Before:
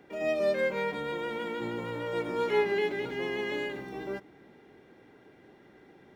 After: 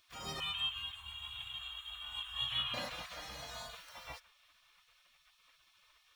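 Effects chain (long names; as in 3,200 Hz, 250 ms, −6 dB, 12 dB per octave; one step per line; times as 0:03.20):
gate on every frequency bin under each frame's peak −25 dB weak
0:00.40–0:02.74: drawn EQ curve 100 Hz 0 dB, 350 Hz −28 dB, 540 Hz −24 dB, 1,100 Hz −3 dB, 2,100 Hz −9 dB, 3,200 Hz +13 dB, 4,800 Hz −23 dB, 7,700 Hz −8 dB
level +7 dB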